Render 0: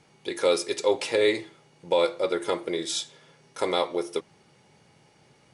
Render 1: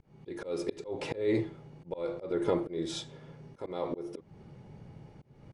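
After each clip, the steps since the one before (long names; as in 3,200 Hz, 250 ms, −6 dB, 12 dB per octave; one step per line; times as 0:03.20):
spectral tilt −4.5 dB per octave
brickwall limiter −16.5 dBFS, peak gain reduction 10 dB
volume swells 265 ms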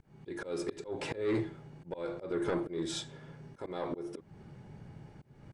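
soft clipping −23.5 dBFS, distortion −15 dB
thirty-one-band graphic EQ 500 Hz −4 dB, 1,600 Hz +6 dB, 8,000 Hz +5 dB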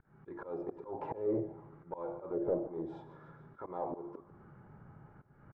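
repeating echo 147 ms, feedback 51%, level −17 dB
envelope-controlled low-pass 580–1,500 Hz down, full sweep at −29 dBFS
level −6 dB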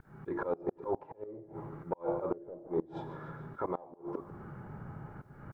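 gate with flip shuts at −30 dBFS, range −24 dB
level +10 dB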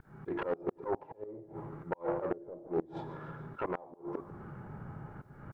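phase distortion by the signal itself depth 0.23 ms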